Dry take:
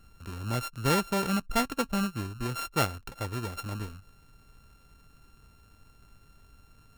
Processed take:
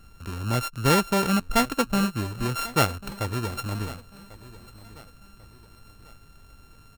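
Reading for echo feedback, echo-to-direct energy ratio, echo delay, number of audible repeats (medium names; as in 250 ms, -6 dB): 38%, -18.0 dB, 1094 ms, 2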